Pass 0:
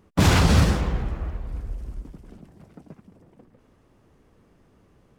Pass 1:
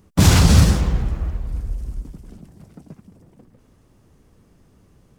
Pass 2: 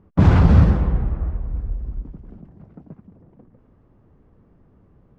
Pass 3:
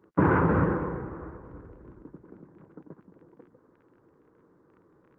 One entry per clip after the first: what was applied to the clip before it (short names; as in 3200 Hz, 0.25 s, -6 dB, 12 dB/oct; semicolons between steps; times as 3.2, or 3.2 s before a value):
tone controls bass +6 dB, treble +9 dB
LPF 1400 Hz 12 dB/oct
crackle 17/s -39 dBFS; speaker cabinet 210–2000 Hz, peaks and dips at 220 Hz -7 dB, 330 Hz +6 dB, 480 Hz +5 dB, 690 Hz -8 dB, 1000 Hz +6 dB, 1500 Hz +6 dB; gain -2 dB; Opus 24 kbps 48000 Hz